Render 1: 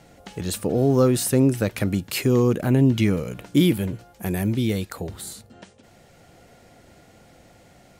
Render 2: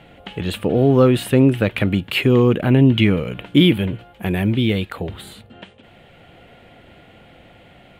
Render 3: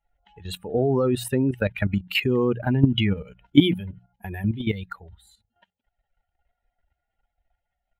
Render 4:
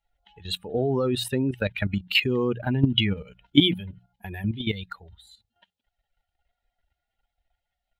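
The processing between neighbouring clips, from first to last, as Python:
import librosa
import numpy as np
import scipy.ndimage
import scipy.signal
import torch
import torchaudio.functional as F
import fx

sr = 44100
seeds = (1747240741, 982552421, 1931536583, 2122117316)

y1 = fx.high_shelf_res(x, sr, hz=4200.0, db=-11.0, q=3.0)
y1 = y1 * librosa.db_to_amplitude(4.5)
y2 = fx.bin_expand(y1, sr, power=2.0)
y2 = fx.hum_notches(y2, sr, base_hz=60, count=3)
y2 = fx.level_steps(y2, sr, step_db=12)
y2 = y2 * librosa.db_to_amplitude(3.5)
y3 = fx.peak_eq(y2, sr, hz=3800.0, db=10.0, octaves=1.1)
y3 = y3 * librosa.db_to_amplitude(-3.0)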